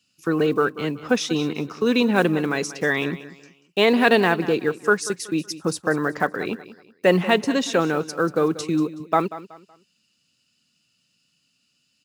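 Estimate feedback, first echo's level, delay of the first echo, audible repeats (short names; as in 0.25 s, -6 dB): 32%, -15.5 dB, 0.187 s, 2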